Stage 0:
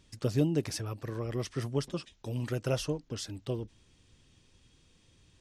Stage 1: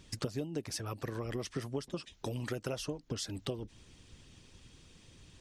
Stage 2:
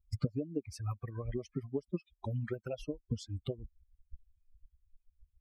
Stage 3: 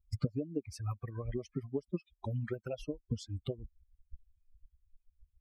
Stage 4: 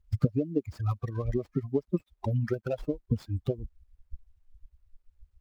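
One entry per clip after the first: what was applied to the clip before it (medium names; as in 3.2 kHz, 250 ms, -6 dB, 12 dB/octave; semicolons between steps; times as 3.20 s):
harmonic-percussive split harmonic -7 dB; compression 8:1, threshold -43 dBFS, peak gain reduction 18 dB; trim +9 dB
expander on every frequency bin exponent 3; tilt EQ -3 dB/octave; trim +1.5 dB
no audible change
median filter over 15 samples; trim +8 dB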